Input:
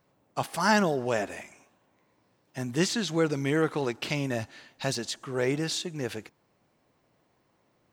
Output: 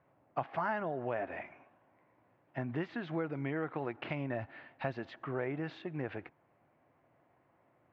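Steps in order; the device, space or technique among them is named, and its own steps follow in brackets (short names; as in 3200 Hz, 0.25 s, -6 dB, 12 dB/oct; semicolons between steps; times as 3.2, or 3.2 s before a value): bass amplifier (compressor 5:1, threshold -32 dBFS, peak gain reduction 13 dB; speaker cabinet 74–2300 Hz, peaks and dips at 200 Hz -7 dB, 440 Hz -4 dB, 690 Hz +4 dB)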